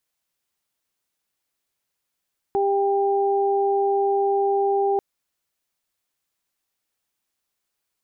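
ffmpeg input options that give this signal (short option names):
-f lavfi -i "aevalsrc='0.106*sin(2*PI*397*t)+0.0794*sin(2*PI*794*t)':d=2.44:s=44100"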